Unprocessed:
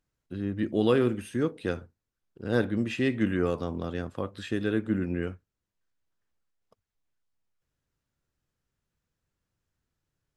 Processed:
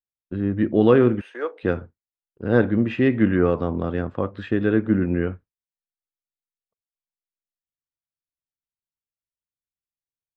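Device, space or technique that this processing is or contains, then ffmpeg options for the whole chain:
hearing-loss simulation: -filter_complex "[0:a]lowpass=2000,agate=range=0.0224:threshold=0.00794:ratio=3:detection=peak,asettb=1/sr,asplit=3[s0][s1][s2];[s0]atrim=end=1.214[s3];[s1]atrim=start=1.21:end=1.63,asetpts=PTS-STARTPTS,afade=t=in:d=0.004:c=qsin,afade=t=out:st=0.416:d=0.004:c=qsin,highpass=f=510:w=0.5412,highpass=f=510:w=1.3066[s4];[s2]atrim=start=1.626[s5];[s3][s4]acrossfade=d=0.004:c1=hsin:c2=qsin[s6];[s6][s5]acrossfade=d=0.004:c1=qsin:c2=hsin,volume=2.51"

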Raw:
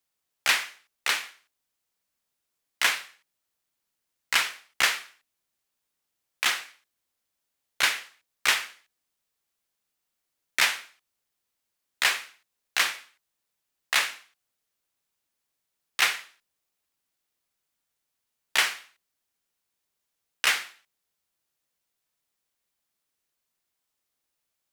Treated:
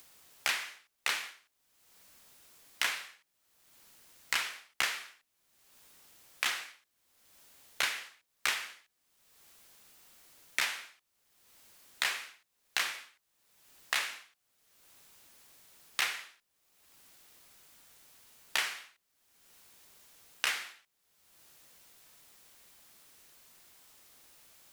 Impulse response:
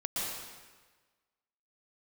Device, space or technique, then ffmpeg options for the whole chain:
upward and downward compression: -af "acompressor=mode=upward:threshold=0.00891:ratio=2.5,acompressor=threshold=0.0398:ratio=6"

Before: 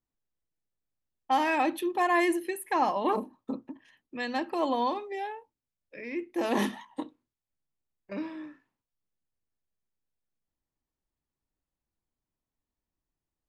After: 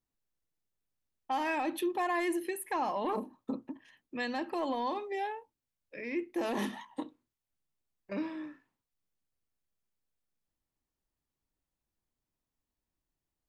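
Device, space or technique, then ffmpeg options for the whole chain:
soft clipper into limiter: -af "asoftclip=type=tanh:threshold=0.168,alimiter=level_in=1.12:limit=0.0631:level=0:latency=1:release=129,volume=0.891"

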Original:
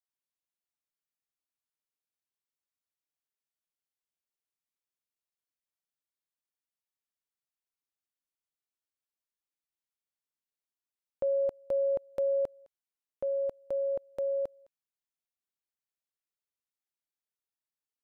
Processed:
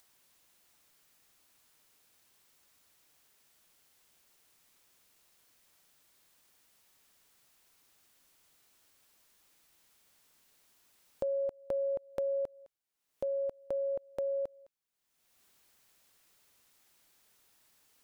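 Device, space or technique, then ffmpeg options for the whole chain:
upward and downward compression: -af "acompressor=mode=upward:threshold=0.00282:ratio=2.5,acompressor=threshold=0.0178:ratio=3,volume=1.26"

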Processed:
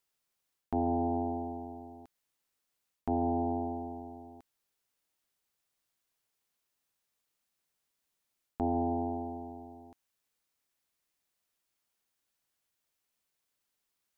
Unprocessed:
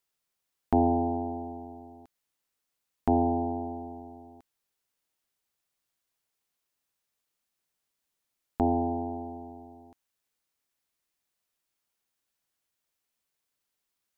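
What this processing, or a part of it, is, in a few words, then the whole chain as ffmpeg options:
compression on the reversed sound: -af "areverse,acompressor=threshold=0.0447:ratio=6,areverse"

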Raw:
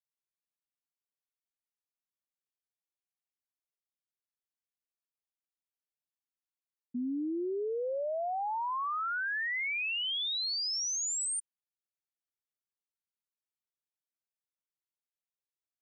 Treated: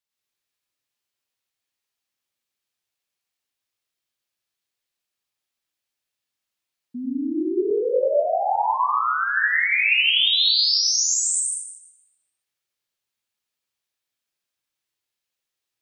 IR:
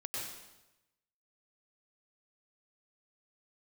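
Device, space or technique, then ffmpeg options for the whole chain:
bathroom: -filter_complex "[0:a]equalizer=f=3400:w=0.64:g=6[s0];[1:a]atrim=start_sample=2205[s1];[s0][s1]afir=irnorm=-1:irlink=0,asettb=1/sr,asplit=3[s2][s3][s4];[s2]atrim=end=7.684[s5];[s3]atrim=start=7.68:end=9.02,asetpts=PTS-STARTPTS,afade=t=in:d=0.004:c=qsin,afade=t=out:st=1.336:d=0.004:c=qsin,asplit=2[s6][s7];[s7]adelay=24,volume=0.794[s8];[s6][s8]amix=inputs=2:normalize=0,atrim=end_sample=59094[s9];[s4]atrim=start=9.016[s10];[s5][s9]acrossfade=d=0.004:c1=hsin:c2=qsin[s11];[s11][s10]acrossfade=d=0.004:c1=qsin:c2=hsin,volume=2.51"

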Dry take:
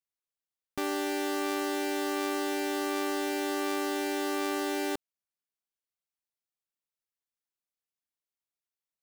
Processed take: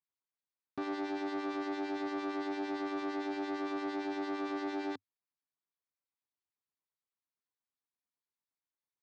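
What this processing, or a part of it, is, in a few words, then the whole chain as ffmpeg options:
guitar amplifier with harmonic tremolo: -filter_complex "[0:a]acrossover=split=1600[s0][s1];[s0]aeval=exprs='val(0)*(1-0.7/2+0.7/2*cos(2*PI*8.8*n/s))':c=same[s2];[s1]aeval=exprs='val(0)*(1-0.7/2-0.7/2*cos(2*PI*8.8*n/s))':c=same[s3];[s2][s3]amix=inputs=2:normalize=0,asoftclip=type=tanh:threshold=0.0224,highpass=91,equalizer=f=100:t=q:w=4:g=6,equalizer=f=270:t=q:w=4:g=5,equalizer=f=570:t=q:w=4:g=-4,equalizer=f=1000:t=q:w=4:g=6,equalizer=f=2900:t=q:w=4:g=-9,lowpass=f=4500:w=0.5412,lowpass=f=4500:w=1.3066"

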